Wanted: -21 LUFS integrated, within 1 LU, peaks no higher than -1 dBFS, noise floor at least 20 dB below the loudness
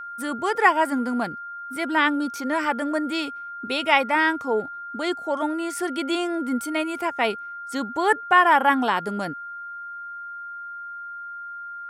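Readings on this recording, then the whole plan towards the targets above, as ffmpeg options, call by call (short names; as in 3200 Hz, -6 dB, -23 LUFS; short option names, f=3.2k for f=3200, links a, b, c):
steady tone 1400 Hz; tone level -33 dBFS; loudness -23.0 LUFS; peak -3.5 dBFS; loudness target -21.0 LUFS
-> -af "bandreject=f=1.4k:w=30"
-af "volume=2dB"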